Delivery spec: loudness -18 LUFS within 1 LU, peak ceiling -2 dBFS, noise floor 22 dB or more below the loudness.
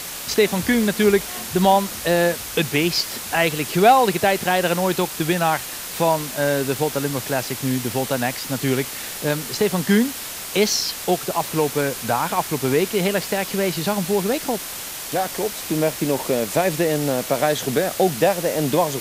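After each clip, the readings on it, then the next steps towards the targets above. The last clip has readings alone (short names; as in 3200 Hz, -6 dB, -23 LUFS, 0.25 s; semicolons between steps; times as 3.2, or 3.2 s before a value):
noise floor -32 dBFS; noise floor target -43 dBFS; loudness -21.0 LUFS; peak -3.0 dBFS; loudness target -18.0 LUFS
-> noise print and reduce 11 dB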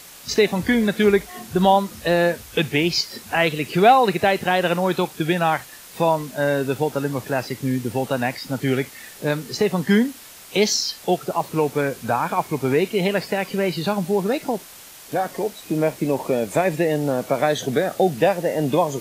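noise floor -43 dBFS; noise floor target -44 dBFS
-> noise print and reduce 6 dB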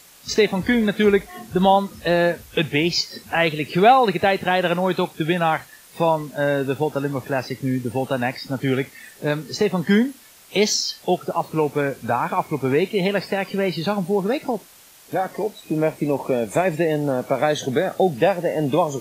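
noise floor -48 dBFS; loudness -21.5 LUFS; peak -3.0 dBFS; loudness target -18.0 LUFS
-> gain +3.5 dB; limiter -2 dBFS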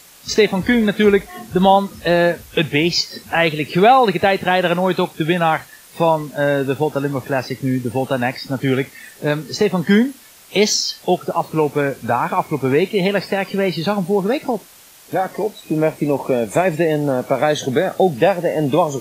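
loudness -18.0 LUFS; peak -2.0 dBFS; noise floor -45 dBFS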